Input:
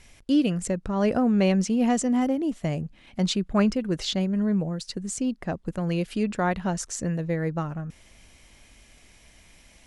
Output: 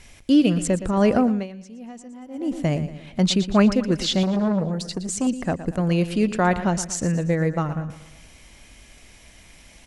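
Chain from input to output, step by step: feedback delay 117 ms, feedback 47%, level -13 dB; 1.17–2.60 s: dip -22 dB, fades 0.30 s; 4.23–5.27 s: transformer saturation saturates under 440 Hz; trim +5 dB

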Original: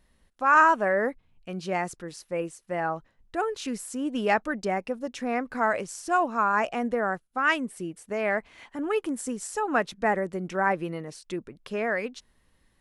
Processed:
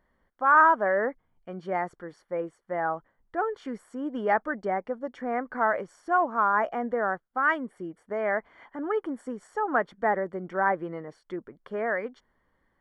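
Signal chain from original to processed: in parallel at -11.5 dB: saturation -19.5 dBFS, distortion -11 dB; on the sum: Savitzky-Golay filter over 41 samples; bass shelf 250 Hz -11 dB

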